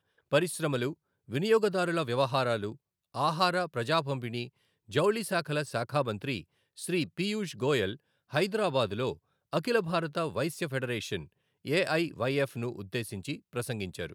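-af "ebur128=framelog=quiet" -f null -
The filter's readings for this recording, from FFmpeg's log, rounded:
Integrated loudness:
  I:         -30.8 LUFS
  Threshold: -41.2 LUFS
Loudness range:
  LRA:         2.7 LU
  Threshold: -51.2 LUFS
  LRA low:   -32.4 LUFS
  LRA high:  -29.6 LUFS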